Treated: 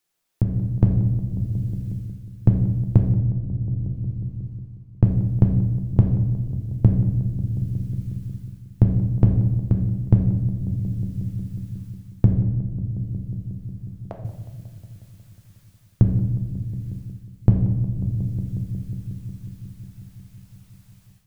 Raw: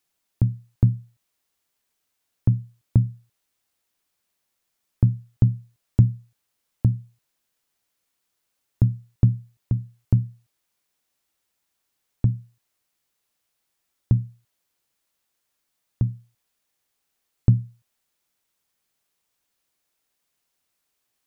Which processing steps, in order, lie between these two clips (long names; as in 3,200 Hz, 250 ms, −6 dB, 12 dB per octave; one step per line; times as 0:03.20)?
0:03.11–0:05.14: running median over 25 samples
0:12.33–0:14.25: four-pole ladder high-pass 570 Hz, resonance 60%
downward compressor 1.5 to 1, threshold −21 dBFS, peak gain reduction 4.5 dB
feedback echo with a low-pass in the loop 181 ms, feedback 83%, low-pass 930 Hz, level −14 dB
on a send at −3 dB: convolution reverb RT60 1.2 s, pre-delay 6 ms
on the sum: automatic gain control gain up to 14.5 dB
level −1 dB